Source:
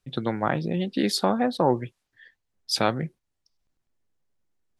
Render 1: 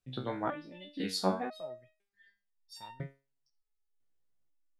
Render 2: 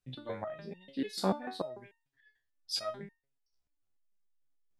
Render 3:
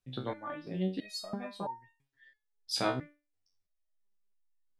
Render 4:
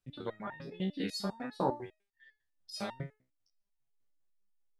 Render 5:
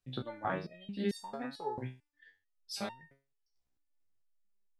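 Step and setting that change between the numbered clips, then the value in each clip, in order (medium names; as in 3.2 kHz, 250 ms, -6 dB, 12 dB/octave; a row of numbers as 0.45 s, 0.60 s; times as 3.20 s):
resonator arpeggio, rate: 2 Hz, 6.8 Hz, 3 Hz, 10 Hz, 4.5 Hz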